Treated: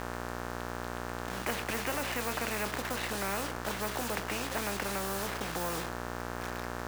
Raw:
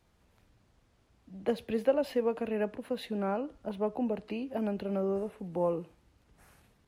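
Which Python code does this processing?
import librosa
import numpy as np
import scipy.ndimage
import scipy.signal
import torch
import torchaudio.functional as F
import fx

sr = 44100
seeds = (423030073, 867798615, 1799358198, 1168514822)

p1 = fx.dmg_buzz(x, sr, base_hz=60.0, harmonics=30, level_db=-44.0, tilt_db=-7, odd_only=False)
p2 = scipy.signal.sosfilt(scipy.signal.butter(4, 1900.0, 'lowpass', fs=sr, output='sos'), p1)
p3 = fx.quant_dither(p2, sr, seeds[0], bits=8, dither='none')
p4 = p2 + F.gain(torch.from_numpy(p3), -7.0).numpy()
p5 = fx.low_shelf(p4, sr, hz=250.0, db=-6.0)
p6 = fx.doubler(p5, sr, ms=25.0, db=-13)
p7 = fx.spectral_comp(p6, sr, ratio=4.0)
y = F.gain(torch.from_numpy(p7), -3.5).numpy()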